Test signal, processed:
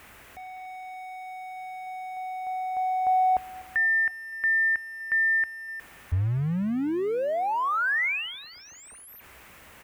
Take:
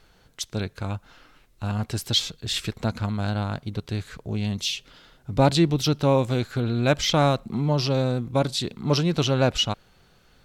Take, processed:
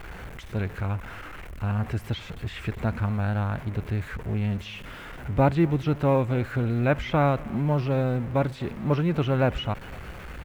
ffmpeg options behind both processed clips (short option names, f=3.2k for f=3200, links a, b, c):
-filter_complex "[0:a]aeval=exprs='val(0)+0.5*0.0251*sgn(val(0))':c=same,acrossover=split=2600[a][b];[b]acompressor=threshold=-34dB:ratio=4:attack=1:release=60[c];[a][c]amix=inputs=2:normalize=0,equalizer=f=63:t=o:w=0.77:g=11,acrusher=bits=8:mode=log:mix=0:aa=0.000001,highshelf=f=3.1k:t=q:w=1.5:g=-11,aecho=1:1:247|494|741:0.075|0.036|0.0173,volume=-3dB"